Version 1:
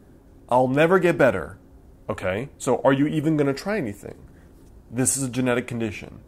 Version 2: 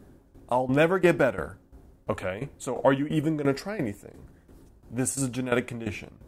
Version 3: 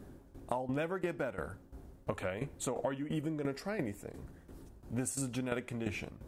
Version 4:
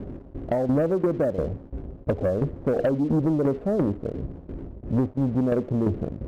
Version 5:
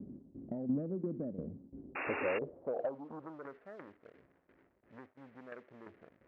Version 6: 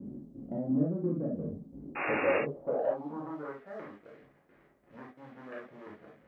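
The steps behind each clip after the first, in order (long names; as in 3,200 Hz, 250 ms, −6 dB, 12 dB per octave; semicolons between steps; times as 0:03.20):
shaped tremolo saw down 2.9 Hz, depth 80%
downward compressor 12 to 1, threshold −32 dBFS, peak gain reduction 17.5 dB
Butterworth low-pass 660 Hz 36 dB per octave; leveller curve on the samples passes 2; level +9 dB
band-pass filter sweep 220 Hz → 1,900 Hz, 0:01.65–0:03.66; sound drawn into the spectrogram noise, 0:01.95–0:02.39, 250–2,800 Hz −32 dBFS; level −7 dB
reverb whose tail is shaped and stops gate 90 ms flat, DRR −5 dB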